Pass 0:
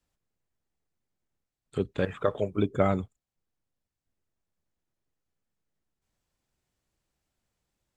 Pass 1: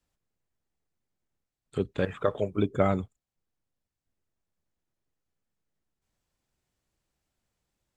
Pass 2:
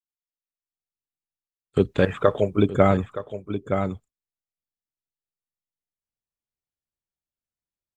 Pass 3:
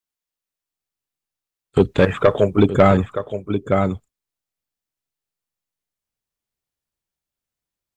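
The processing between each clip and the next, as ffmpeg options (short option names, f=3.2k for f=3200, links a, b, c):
-af anull
-af "agate=range=-33dB:threshold=-41dB:ratio=3:detection=peak,aecho=1:1:920:0.237,dynaudnorm=f=270:g=5:m=15.5dB,volume=-1dB"
-af "asoftclip=type=tanh:threshold=-10.5dB,volume=7dB"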